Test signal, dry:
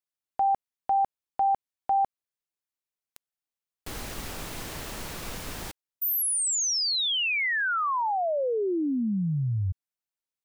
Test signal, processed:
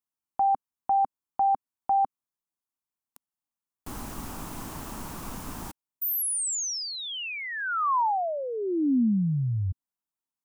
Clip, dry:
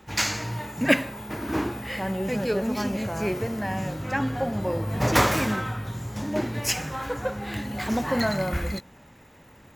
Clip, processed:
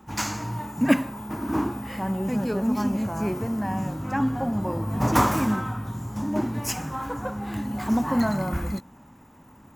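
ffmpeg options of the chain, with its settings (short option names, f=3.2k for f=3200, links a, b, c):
-af "equalizer=f=250:t=o:w=1:g=7,equalizer=f=500:t=o:w=1:g=-7,equalizer=f=1k:t=o:w=1:g=7,equalizer=f=2k:t=o:w=1:g=-7,equalizer=f=4k:t=o:w=1:g=-7,volume=-1dB"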